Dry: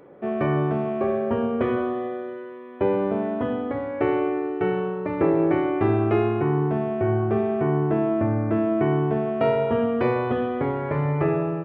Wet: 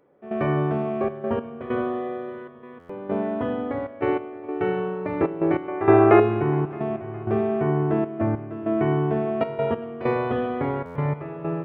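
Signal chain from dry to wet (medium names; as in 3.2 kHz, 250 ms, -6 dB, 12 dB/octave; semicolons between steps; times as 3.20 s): 5.68–6.20 s: high-order bell 910 Hz +10.5 dB 3 oct; hum notches 60/120/180/240/300/360/420/480/540 Hz; trance gate "..xxxxx.x" 97 bpm -12 dB; multi-head delay 206 ms, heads second and third, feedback 61%, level -23 dB; buffer glitch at 2.79/10.85 s, samples 512, times 8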